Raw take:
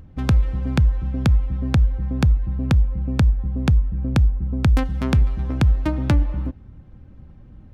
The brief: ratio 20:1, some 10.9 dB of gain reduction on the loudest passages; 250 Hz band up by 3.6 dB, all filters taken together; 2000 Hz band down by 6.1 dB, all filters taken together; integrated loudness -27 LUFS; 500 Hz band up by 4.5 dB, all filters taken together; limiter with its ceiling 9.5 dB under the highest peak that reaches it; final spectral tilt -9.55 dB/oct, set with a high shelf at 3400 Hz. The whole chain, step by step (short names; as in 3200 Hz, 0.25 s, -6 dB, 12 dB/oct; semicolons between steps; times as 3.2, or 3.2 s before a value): bell 250 Hz +3.5 dB; bell 500 Hz +5 dB; bell 2000 Hz -6.5 dB; high shelf 3400 Hz -8 dB; compressor 20:1, threshold -22 dBFS; gain +4.5 dB; limiter -19 dBFS